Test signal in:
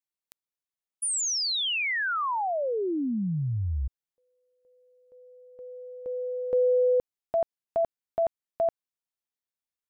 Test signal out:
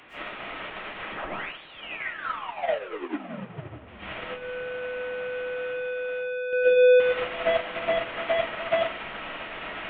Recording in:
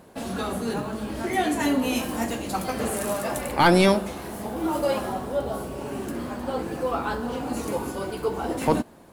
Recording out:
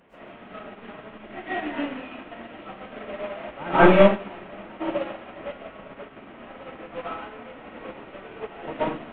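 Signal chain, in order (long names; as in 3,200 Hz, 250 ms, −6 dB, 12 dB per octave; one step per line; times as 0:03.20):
linear delta modulator 16 kbit/s, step −22 dBFS
low-shelf EQ 60 Hz −8 dB
on a send: echo with a time of its own for lows and highs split 1,300 Hz, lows 520 ms, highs 155 ms, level −16 dB
on the sum: comb and all-pass reverb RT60 0.61 s, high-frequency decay 0.6×, pre-delay 85 ms, DRR −9.5 dB
expander for the loud parts 2.5 to 1, over −23 dBFS
level −4 dB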